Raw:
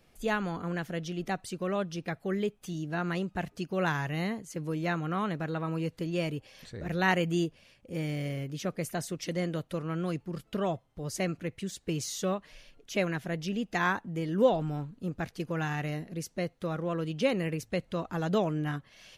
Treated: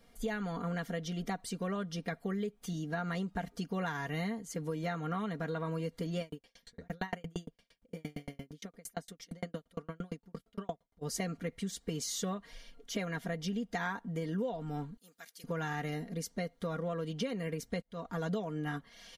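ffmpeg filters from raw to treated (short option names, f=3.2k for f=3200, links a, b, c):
-filter_complex "[0:a]asplit=3[a][b][c];[a]afade=t=out:st=6.2:d=0.02[d];[b]aeval=exprs='val(0)*pow(10,-40*if(lt(mod(8.7*n/s,1),2*abs(8.7)/1000),1-mod(8.7*n/s,1)/(2*abs(8.7)/1000),(mod(8.7*n/s,1)-2*abs(8.7)/1000)/(1-2*abs(8.7)/1000))/20)':c=same,afade=t=in:st=6.2:d=0.02,afade=t=out:st=11.01:d=0.02[e];[c]afade=t=in:st=11.01:d=0.02[f];[d][e][f]amix=inputs=3:normalize=0,asettb=1/sr,asplit=3[g][h][i];[g]atrim=end=14.974[j];[h]atrim=start=14.97:end=15.44,asetpts=PTS-STARTPTS,afade=t=in:d=0.004:c=qsin,afade=t=out:st=0.466:d=0.004:c=qsin,aderivative[k];[i]atrim=start=15.436[l];[j][k]acrossfade=d=0.004:c1=hsin:c2=qsin[m];[m][l]acrossfade=d=0.004:c1=qsin:c2=hsin,asplit=2[n][o];[n]atrim=end=17.82,asetpts=PTS-STARTPTS,afade=t=out:st=17.816:d=0.004:c=hsin[p];[o]atrim=start=17.82,asetpts=PTS-STARTPTS,afade=t=in:d=0.47[q];[p][q]concat=n=2:v=0:a=1,bandreject=f=2.6k:w=7.5,aecho=1:1:4.3:0.69,acompressor=threshold=-31dB:ratio=10,volume=-1dB"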